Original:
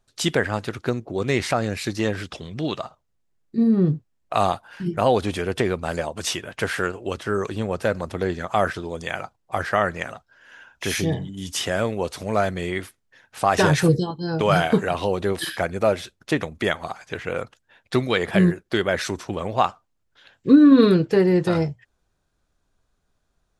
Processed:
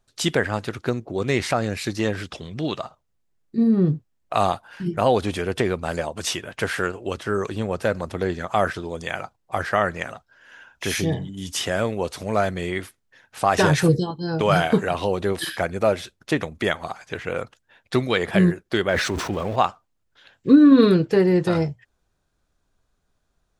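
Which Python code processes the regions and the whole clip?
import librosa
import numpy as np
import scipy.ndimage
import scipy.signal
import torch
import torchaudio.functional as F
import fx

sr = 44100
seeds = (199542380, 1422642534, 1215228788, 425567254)

y = fx.chain(x, sr, fx.zero_step(step_db=-34.5),
    fx.high_shelf(hz=5400.0, db=-9.5),
    fx.sustainer(db_per_s=46.0), at=(18.89, 19.56))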